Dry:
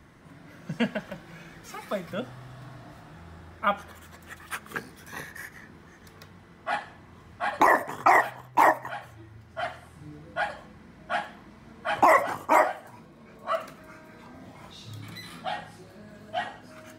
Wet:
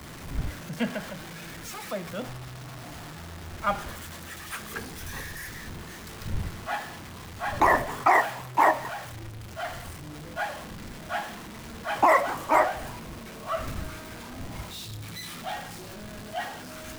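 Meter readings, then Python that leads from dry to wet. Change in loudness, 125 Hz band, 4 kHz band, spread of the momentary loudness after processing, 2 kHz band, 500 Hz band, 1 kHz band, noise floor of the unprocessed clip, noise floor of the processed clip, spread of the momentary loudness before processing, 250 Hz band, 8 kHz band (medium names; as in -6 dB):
-2.5 dB, +6.0 dB, +2.5 dB, 18 LU, -1.0 dB, -0.5 dB, -0.5 dB, -52 dBFS, -42 dBFS, 24 LU, 0.0 dB, +5.0 dB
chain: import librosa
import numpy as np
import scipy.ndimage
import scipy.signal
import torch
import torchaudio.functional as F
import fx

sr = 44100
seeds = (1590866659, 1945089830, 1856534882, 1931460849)

y = x + 0.5 * 10.0 ** (-29.5 / 20.0) * np.sign(x)
y = fx.dmg_wind(y, sr, seeds[0], corner_hz=120.0, level_db=-39.0)
y = fx.band_widen(y, sr, depth_pct=40)
y = y * librosa.db_to_amplitude(-5.0)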